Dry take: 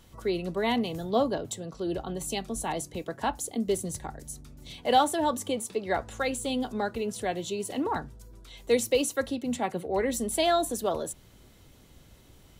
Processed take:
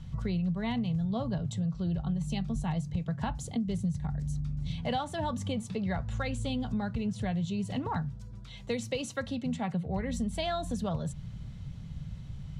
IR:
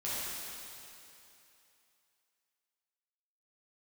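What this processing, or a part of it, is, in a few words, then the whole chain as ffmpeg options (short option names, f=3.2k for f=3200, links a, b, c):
jukebox: -filter_complex "[0:a]asettb=1/sr,asplit=3[a][b][c];[a]atrim=end=7.884[d];[b]atrim=start=7.88:end=9.84,asetpts=PTS-STARTPTS,afade=t=in:d=0.004:c=qsin,afade=t=out:st=1.956:d=0.004:c=qsin,highpass=f=190:p=1[e];[c]atrim=start=9.836[f];[d][e]acrossfade=d=0.004:c1=hsin:c2=qsin[g];[g][f]acrossfade=d=0.004:c1=qsin:c2=hsin,lowpass=5.5k,lowshelf=f=230:t=q:w=3:g=13,acompressor=threshold=-29dB:ratio=5"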